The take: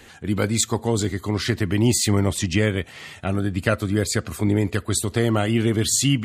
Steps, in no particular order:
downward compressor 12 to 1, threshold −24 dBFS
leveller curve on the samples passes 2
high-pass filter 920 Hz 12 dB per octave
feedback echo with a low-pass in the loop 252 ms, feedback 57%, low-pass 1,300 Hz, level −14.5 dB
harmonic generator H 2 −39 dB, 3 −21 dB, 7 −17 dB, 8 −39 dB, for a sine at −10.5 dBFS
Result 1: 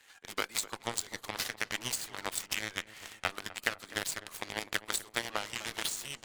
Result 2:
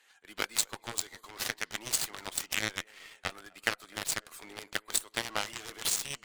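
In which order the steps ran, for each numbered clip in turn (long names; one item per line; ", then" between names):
high-pass filter, then leveller curve on the samples, then downward compressor, then harmonic generator, then feedback echo with a low-pass in the loop
high-pass filter, then downward compressor, then feedback echo with a low-pass in the loop, then harmonic generator, then leveller curve on the samples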